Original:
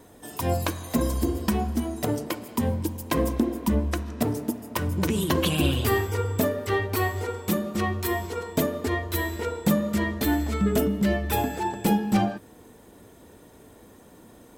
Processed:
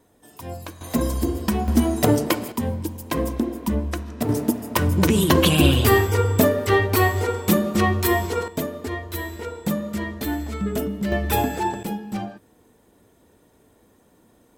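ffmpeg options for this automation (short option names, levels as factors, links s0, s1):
-af "asetnsamples=n=441:p=0,asendcmd='0.81 volume volume 2dB;1.68 volume volume 9dB;2.52 volume volume 0dB;4.29 volume volume 7dB;8.48 volume volume -2.5dB;11.12 volume volume 4dB;11.83 volume volume -7dB',volume=0.355"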